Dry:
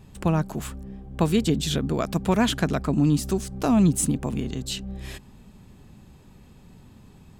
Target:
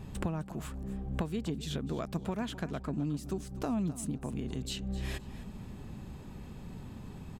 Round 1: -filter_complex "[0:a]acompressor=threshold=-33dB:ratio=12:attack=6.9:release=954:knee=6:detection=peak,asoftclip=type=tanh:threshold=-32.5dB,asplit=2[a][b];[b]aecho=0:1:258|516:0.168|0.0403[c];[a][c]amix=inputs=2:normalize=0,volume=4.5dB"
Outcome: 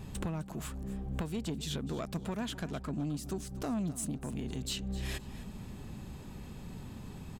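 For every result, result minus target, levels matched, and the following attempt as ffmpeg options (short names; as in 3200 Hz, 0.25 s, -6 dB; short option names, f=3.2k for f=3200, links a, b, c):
soft clip: distortion +17 dB; 8000 Hz band +4.5 dB
-filter_complex "[0:a]acompressor=threshold=-33dB:ratio=12:attack=6.9:release=954:knee=6:detection=peak,asoftclip=type=tanh:threshold=-21.5dB,asplit=2[a][b];[b]aecho=0:1:258|516:0.168|0.0403[c];[a][c]amix=inputs=2:normalize=0,volume=4.5dB"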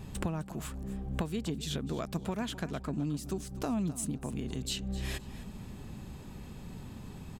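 8000 Hz band +4.5 dB
-filter_complex "[0:a]acompressor=threshold=-33dB:ratio=12:attack=6.9:release=954:knee=6:detection=peak,highshelf=f=3k:g=-5.5,asoftclip=type=tanh:threshold=-21.5dB,asplit=2[a][b];[b]aecho=0:1:258|516:0.168|0.0403[c];[a][c]amix=inputs=2:normalize=0,volume=4.5dB"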